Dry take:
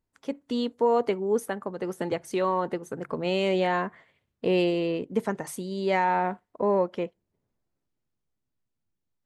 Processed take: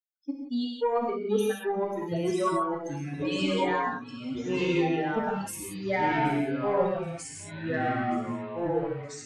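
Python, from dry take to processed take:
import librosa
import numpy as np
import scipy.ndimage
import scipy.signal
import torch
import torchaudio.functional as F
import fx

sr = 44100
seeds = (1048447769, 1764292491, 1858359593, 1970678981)

p1 = fx.bin_expand(x, sr, power=3.0)
p2 = fx.low_shelf(p1, sr, hz=170.0, db=-4.5)
p3 = fx.rider(p2, sr, range_db=4, speed_s=0.5)
p4 = p2 + (p3 * 10.0 ** (-1.0 / 20.0))
p5 = 10.0 ** (-15.0 / 20.0) * np.tanh(p4 / 10.0 ** (-15.0 / 20.0))
p6 = p5 + fx.echo_banded(p5, sr, ms=775, feedback_pct=74, hz=2800.0, wet_db=-15.5, dry=0)
p7 = fx.rev_gated(p6, sr, seeds[0], gate_ms=200, shape='flat', drr_db=-1.0)
p8 = fx.echo_pitch(p7, sr, ms=679, semitones=-3, count=3, db_per_echo=-3.0)
y = p8 * 10.0 ** (-4.5 / 20.0)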